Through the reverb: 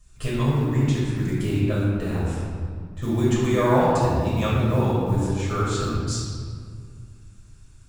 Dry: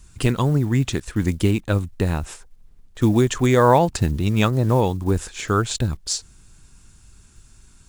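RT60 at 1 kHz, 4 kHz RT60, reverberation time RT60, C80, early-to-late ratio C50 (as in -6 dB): 1.9 s, 1.2 s, 2.0 s, -0.5 dB, -2.0 dB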